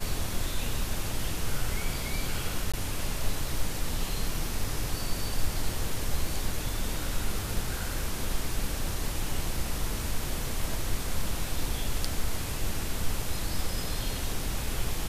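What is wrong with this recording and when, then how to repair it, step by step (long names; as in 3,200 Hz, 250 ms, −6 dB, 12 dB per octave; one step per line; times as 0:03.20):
0:02.72–0:02.74: drop-out 16 ms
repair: repair the gap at 0:02.72, 16 ms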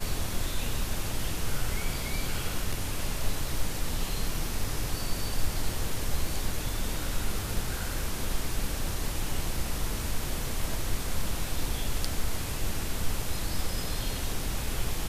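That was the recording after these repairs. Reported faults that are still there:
none of them is left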